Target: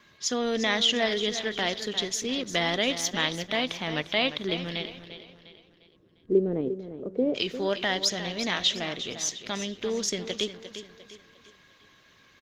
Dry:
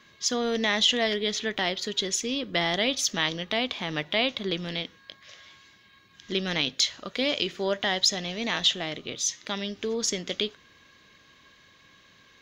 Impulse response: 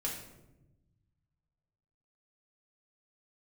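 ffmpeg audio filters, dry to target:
-filter_complex "[0:a]asplit=3[a][b][c];[a]afade=t=out:st=4.99:d=0.02[d];[b]lowpass=f=420:t=q:w=3.5,afade=t=in:st=4.99:d=0.02,afade=t=out:st=7.34:d=0.02[e];[c]afade=t=in:st=7.34:d=0.02[f];[d][e][f]amix=inputs=3:normalize=0,aecho=1:1:351|702|1053|1404:0.282|0.116|0.0474|0.0194" -ar 48000 -c:a libopus -b:a 20k

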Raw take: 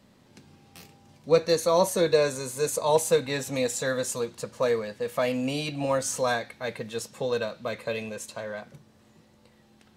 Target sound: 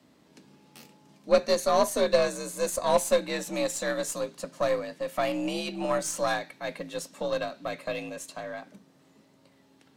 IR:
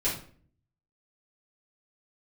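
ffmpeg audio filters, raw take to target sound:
-af "afreqshift=53,aeval=exprs='0.376*(cos(1*acos(clip(val(0)/0.376,-1,1)))-cos(1*PI/2))+0.0266*(cos(3*acos(clip(val(0)/0.376,-1,1)))-cos(3*PI/2))+0.0188*(cos(6*acos(clip(val(0)/0.376,-1,1)))-cos(6*PI/2))':c=same"

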